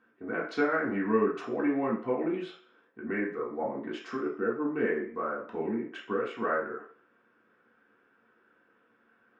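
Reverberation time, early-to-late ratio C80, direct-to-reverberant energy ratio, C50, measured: 0.50 s, 11.0 dB, -5.5 dB, 6.5 dB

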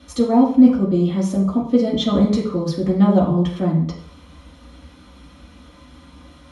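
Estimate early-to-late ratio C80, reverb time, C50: 9.5 dB, 0.60 s, 6.0 dB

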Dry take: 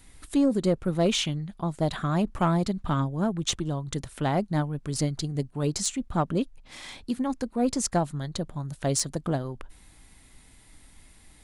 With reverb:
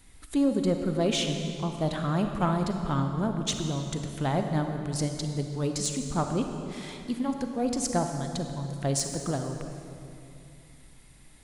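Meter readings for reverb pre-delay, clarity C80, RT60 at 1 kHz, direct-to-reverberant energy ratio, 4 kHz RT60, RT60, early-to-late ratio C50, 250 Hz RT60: 35 ms, 6.0 dB, 2.5 s, 5.0 dB, 2.1 s, 2.7 s, 5.0 dB, 3.2 s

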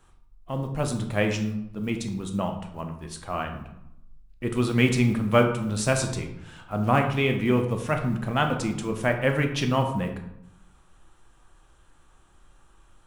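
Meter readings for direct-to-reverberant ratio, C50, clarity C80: 4.0 dB, 8.0 dB, 10.5 dB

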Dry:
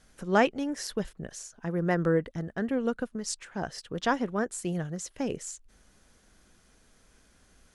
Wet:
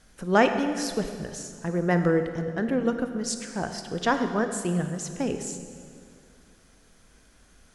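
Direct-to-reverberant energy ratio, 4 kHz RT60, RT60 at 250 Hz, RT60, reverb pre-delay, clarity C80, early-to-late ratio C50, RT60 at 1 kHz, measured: 7.0 dB, 1.9 s, 2.6 s, 2.2 s, 21 ms, 9.0 dB, 8.0 dB, 2.1 s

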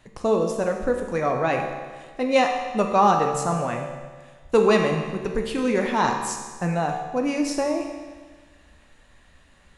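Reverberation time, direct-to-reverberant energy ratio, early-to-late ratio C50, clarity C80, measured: 1.5 s, 2.0 dB, 4.5 dB, 6.0 dB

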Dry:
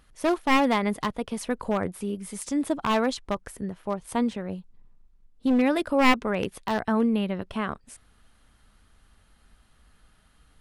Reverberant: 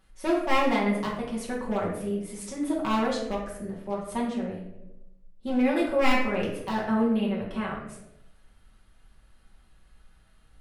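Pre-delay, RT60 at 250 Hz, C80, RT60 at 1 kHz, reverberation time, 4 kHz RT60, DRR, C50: 5 ms, 1.0 s, 7.0 dB, 0.75 s, 0.90 s, 0.50 s, -5.5 dB, 4.0 dB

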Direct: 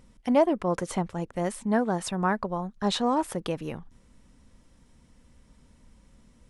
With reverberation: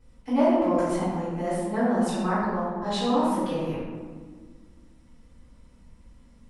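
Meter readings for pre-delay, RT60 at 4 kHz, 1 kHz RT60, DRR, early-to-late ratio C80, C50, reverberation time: 3 ms, 0.85 s, 1.5 s, -17.0 dB, 0.5 dB, -2.0 dB, 1.6 s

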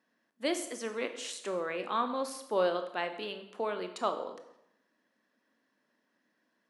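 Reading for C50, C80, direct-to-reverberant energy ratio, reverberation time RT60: 10.0 dB, 12.5 dB, 7.5 dB, 0.80 s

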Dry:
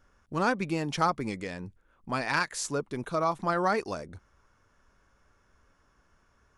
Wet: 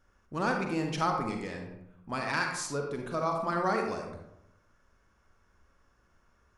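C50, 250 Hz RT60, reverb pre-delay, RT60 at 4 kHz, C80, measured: 3.5 dB, 0.95 s, 38 ms, 0.45 s, 7.0 dB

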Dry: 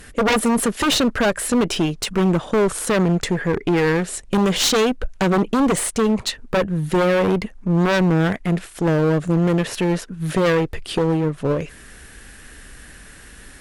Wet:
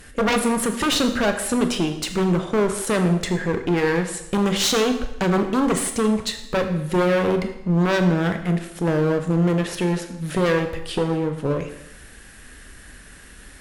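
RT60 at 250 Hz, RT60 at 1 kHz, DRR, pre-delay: 0.85 s, 0.80 s, 6.5 dB, 21 ms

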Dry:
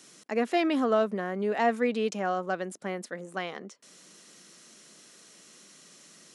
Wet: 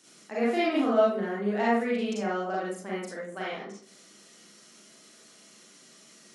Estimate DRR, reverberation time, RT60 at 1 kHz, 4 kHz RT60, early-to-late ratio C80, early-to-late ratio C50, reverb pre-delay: -7.0 dB, 0.50 s, 0.45 s, 0.30 s, 6.0 dB, -1.0 dB, 35 ms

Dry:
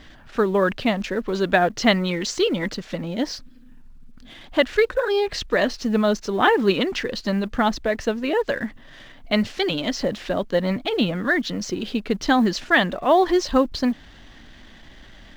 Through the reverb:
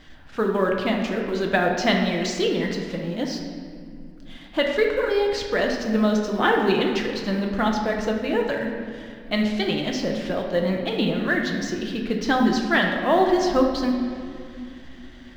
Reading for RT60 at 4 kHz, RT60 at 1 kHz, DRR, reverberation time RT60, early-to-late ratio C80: 1.4 s, 2.3 s, 1.0 dB, 2.4 s, 5.0 dB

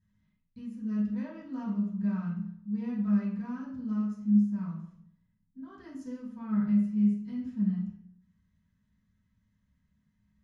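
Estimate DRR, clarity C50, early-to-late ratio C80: -10.0 dB, 3.5 dB, 7.0 dB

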